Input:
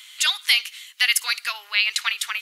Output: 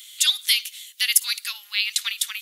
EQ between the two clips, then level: differentiator; bell 3500 Hz +6.5 dB 0.2 oct; +3.5 dB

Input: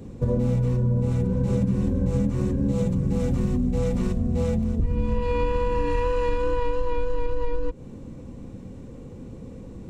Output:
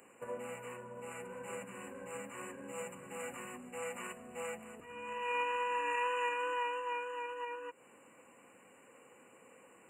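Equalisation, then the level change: HPF 1200 Hz 12 dB/oct; brick-wall FIR band-stop 3000–7000 Hz; +1.5 dB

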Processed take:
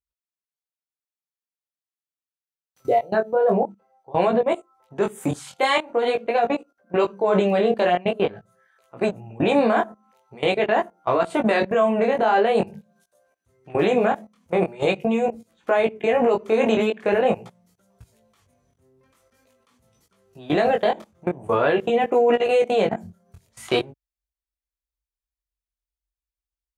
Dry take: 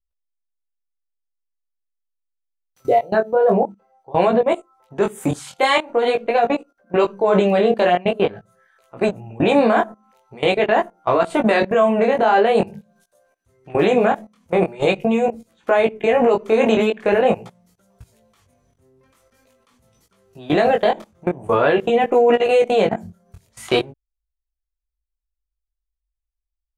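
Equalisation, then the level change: HPF 51 Hz; -3.5 dB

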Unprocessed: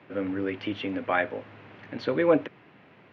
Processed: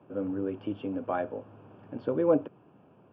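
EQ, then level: running mean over 22 samples; -1.5 dB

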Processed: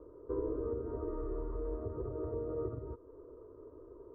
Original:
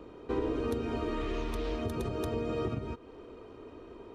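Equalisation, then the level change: LPF 1000 Hz 24 dB/oct; fixed phaser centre 770 Hz, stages 6; -2.5 dB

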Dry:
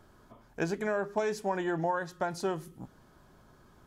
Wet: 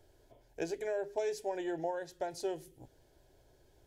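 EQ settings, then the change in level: fixed phaser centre 490 Hz, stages 4; -2.5 dB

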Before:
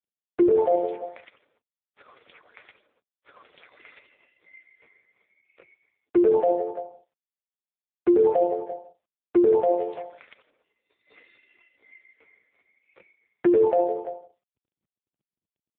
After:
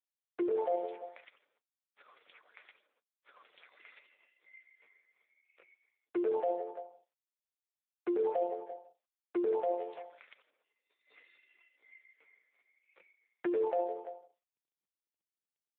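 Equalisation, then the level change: HPF 820 Hz 6 dB/oct; -6.0 dB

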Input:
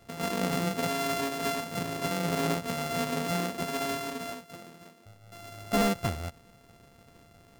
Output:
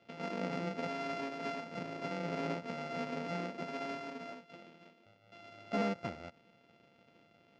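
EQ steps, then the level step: dynamic EQ 3200 Hz, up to -8 dB, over -52 dBFS, Q 1.8; speaker cabinet 250–4200 Hz, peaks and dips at 270 Hz -3 dB, 410 Hz -6 dB, 730 Hz -6 dB, 1100 Hz -10 dB, 1700 Hz -8 dB, 3900 Hz -7 dB; -2.0 dB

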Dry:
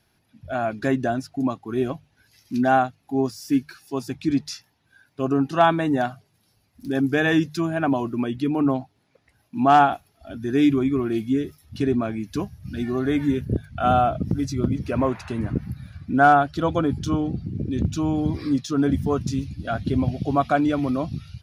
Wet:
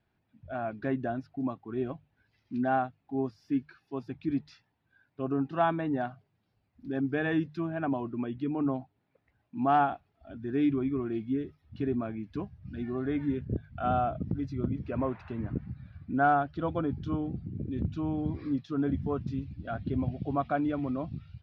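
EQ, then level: air absorption 340 m; -8.0 dB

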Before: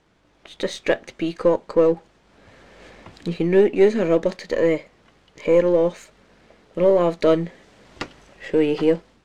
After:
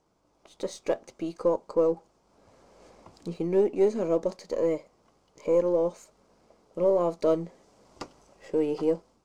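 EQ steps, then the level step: low shelf 310 Hz -6.5 dB; band shelf 2400 Hz -11 dB; notch 1800 Hz, Q 12; -5.0 dB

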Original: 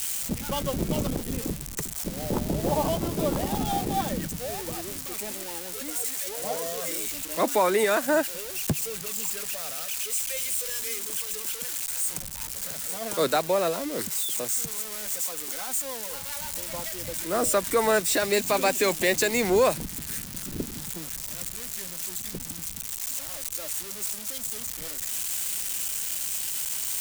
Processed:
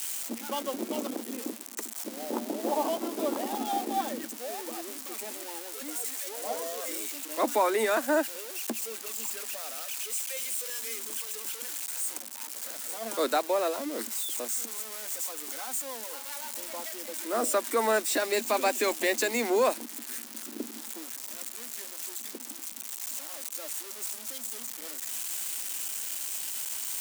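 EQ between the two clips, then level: rippled Chebyshev high-pass 220 Hz, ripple 3 dB; -1.5 dB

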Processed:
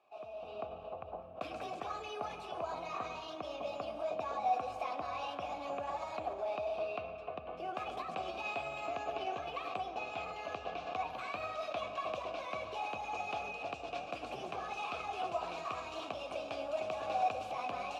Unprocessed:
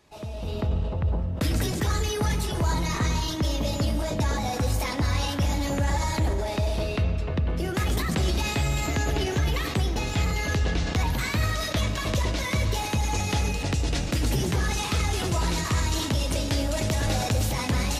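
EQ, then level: vowel filter a; tone controls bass -4 dB, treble -1 dB; high shelf 8300 Hz -4 dB; +3.0 dB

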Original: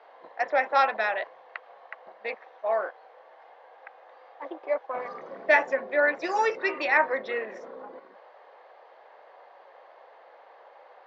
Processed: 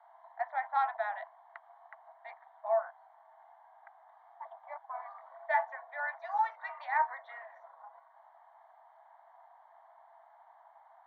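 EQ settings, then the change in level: running mean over 17 samples; rippled Chebyshev high-pass 650 Hz, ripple 6 dB; air absorption 68 m; 0.0 dB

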